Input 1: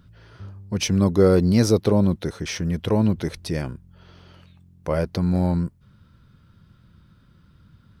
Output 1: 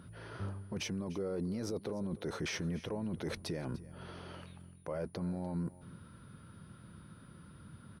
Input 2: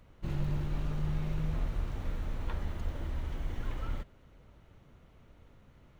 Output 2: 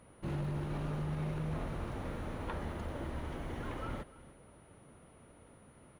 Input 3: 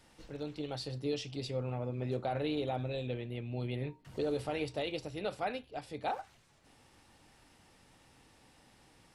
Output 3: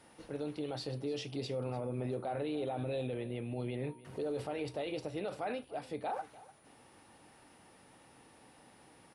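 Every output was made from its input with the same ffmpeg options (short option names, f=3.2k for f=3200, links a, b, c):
-filter_complex "[0:a]highpass=f=250:p=1,highshelf=f=2.1k:g=-10,areverse,acompressor=threshold=-33dB:ratio=6,areverse,alimiter=level_in=12dB:limit=-24dB:level=0:latency=1:release=29,volume=-12dB,aeval=exprs='val(0)+0.000178*sin(2*PI*9700*n/s)':c=same,asplit=2[a][b];[b]aecho=0:1:297:0.119[c];[a][c]amix=inputs=2:normalize=0,volume=6.5dB"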